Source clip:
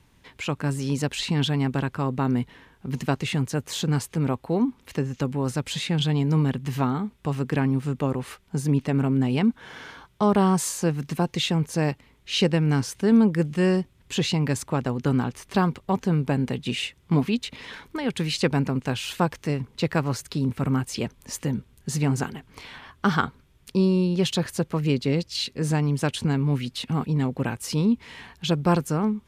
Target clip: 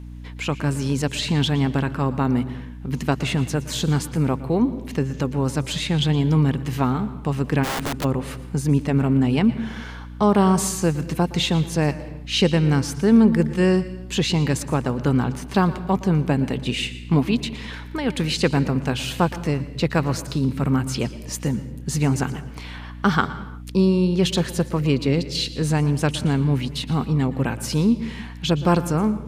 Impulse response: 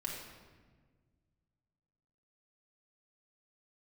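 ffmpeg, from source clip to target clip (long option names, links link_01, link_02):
-filter_complex "[0:a]asplit=2[link_01][link_02];[1:a]atrim=start_sample=2205,afade=type=out:start_time=0.3:duration=0.01,atrim=end_sample=13671,adelay=116[link_03];[link_02][link_03]afir=irnorm=-1:irlink=0,volume=-14.5dB[link_04];[link_01][link_04]amix=inputs=2:normalize=0,aeval=exprs='val(0)+0.0126*(sin(2*PI*60*n/s)+sin(2*PI*2*60*n/s)/2+sin(2*PI*3*60*n/s)/3+sin(2*PI*4*60*n/s)/4+sin(2*PI*5*60*n/s)/5)':channel_layout=same,asplit=3[link_05][link_06][link_07];[link_05]afade=type=out:start_time=7.63:duration=0.02[link_08];[link_06]aeval=exprs='(mod(14.1*val(0)+1,2)-1)/14.1':channel_layout=same,afade=type=in:start_time=7.63:duration=0.02,afade=type=out:start_time=8.03:duration=0.02[link_09];[link_07]afade=type=in:start_time=8.03:duration=0.02[link_10];[link_08][link_09][link_10]amix=inputs=3:normalize=0,volume=3dB"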